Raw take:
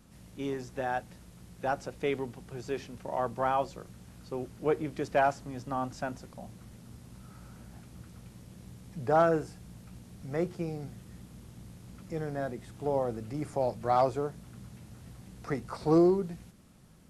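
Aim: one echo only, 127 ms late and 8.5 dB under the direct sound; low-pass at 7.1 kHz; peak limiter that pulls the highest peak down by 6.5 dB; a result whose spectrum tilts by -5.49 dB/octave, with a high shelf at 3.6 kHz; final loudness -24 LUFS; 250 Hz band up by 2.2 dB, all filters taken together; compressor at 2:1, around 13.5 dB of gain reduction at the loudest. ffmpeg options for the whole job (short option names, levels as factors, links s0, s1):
-af "lowpass=7100,equalizer=f=250:t=o:g=3.5,highshelf=f=3600:g=-6,acompressor=threshold=0.00708:ratio=2,alimiter=level_in=2.24:limit=0.0631:level=0:latency=1,volume=0.447,aecho=1:1:127:0.376,volume=10"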